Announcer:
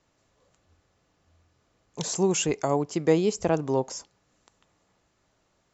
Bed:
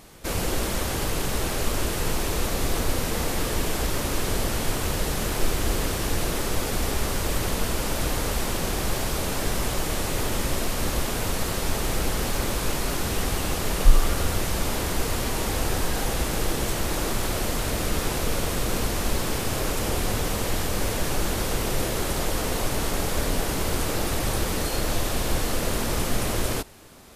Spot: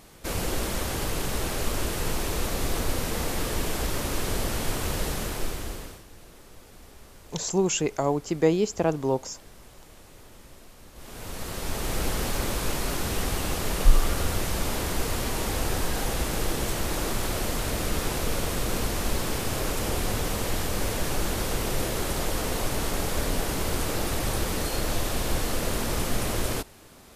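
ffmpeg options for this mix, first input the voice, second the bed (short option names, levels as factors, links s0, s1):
-filter_complex "[0:a]adelay=5350,volume=1[s0];[1:a]volume=8.91,afade=t=out:st=5.05:d=0.99:silence=0.0891251,afade=t=in:st=10.94:d=1.11:silence=0.0841395[s1];[s0][s1]amix=inputs=2:normalize=0"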